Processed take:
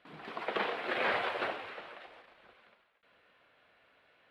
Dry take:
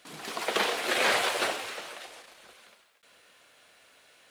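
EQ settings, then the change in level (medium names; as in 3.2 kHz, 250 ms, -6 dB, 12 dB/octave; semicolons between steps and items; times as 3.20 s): distance through air 450 m; peaking EQ 350 Hz -2.5 dB 2.7 oct; -1.5 dB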